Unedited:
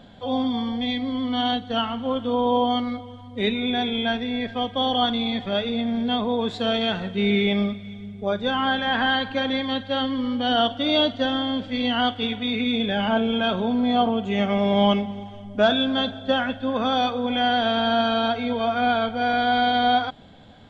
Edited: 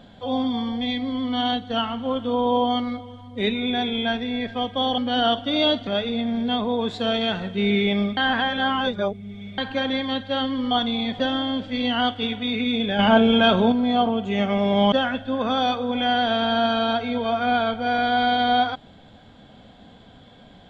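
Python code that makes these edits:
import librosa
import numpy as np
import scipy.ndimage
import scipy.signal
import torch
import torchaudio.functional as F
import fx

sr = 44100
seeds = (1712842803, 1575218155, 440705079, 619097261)

y = fx.edit(x, sr, fx.swap(start_s=4.98, length_s=0.49, other_s=10.31, other_length_s=0.89),
    fx.reverse_span(start_s=7.77, length_s=1.41),
    fx.clip_gain(start_s=12.99, length_s=0.73, db=6.0),
    fx.cut(start_s=14.92, length_s=1.35), tone=tone)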